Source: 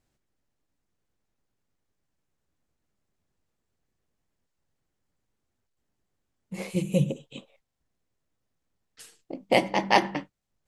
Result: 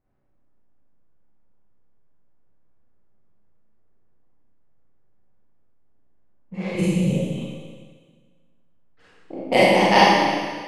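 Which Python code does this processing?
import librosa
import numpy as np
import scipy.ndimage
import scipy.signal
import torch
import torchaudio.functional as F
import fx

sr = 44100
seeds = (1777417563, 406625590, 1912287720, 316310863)

y = fx.env_lowpass(x, sr, base_hz=1300.0, full_db=-21.5)
y = fx.over_compress(y, sr, threshold_db=-26.0, ratio=-0.5, at=(6.65, 7.1))
y = fx.rev_schroeder(y, sr, rt60_s=1.6, comb_ms=30, drr_db=-9.0)
y = y * librosa.db_to_amplitude(-1.0)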